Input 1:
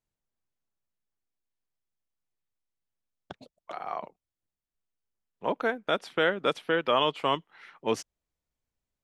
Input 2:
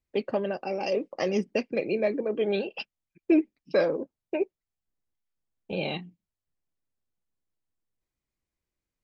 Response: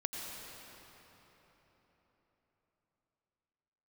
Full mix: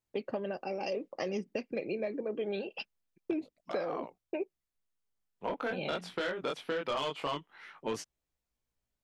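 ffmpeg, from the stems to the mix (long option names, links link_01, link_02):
-filter_complex "[0:a]flanger=delay=17:depth=5.3:speed=0.23,asoftclip=type=tanh:threshold=-24.5dB,volume=2.5dB[link_01];[1:a]agate=range=-33dB:threshold=-53dB:ratio=3:detection=peak,volume=-4.5dB[link_02];[link_01][link_02]amix=inputs=2:normalize=0,acompressor=threshold=-31dB:ratio=6"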